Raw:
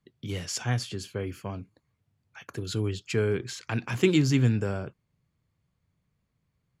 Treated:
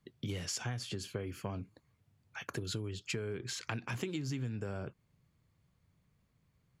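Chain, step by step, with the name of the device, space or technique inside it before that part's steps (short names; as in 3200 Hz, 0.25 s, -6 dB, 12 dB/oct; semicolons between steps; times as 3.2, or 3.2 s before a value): serial compression, leveller first (compressor 3:1, threshold -26 dBFS, peak gain reduction 7.5 dB; compressor 6:1, threshold -38 dBFS, peak gain reduction 14.5 dB); gain +2.5 dB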